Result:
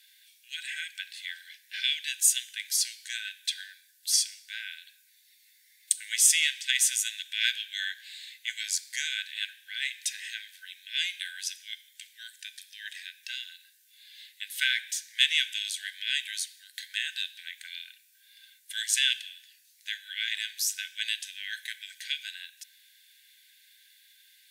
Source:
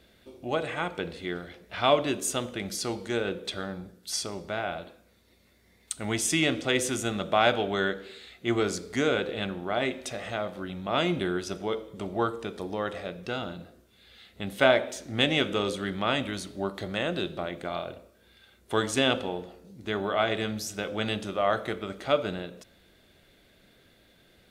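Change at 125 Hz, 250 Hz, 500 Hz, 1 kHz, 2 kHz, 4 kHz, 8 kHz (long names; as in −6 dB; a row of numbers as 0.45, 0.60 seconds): below −40 dB, below −40 dB, below −40 dB, below −40 dB, 0.0 dB, +4.0 dB, +8.5 dB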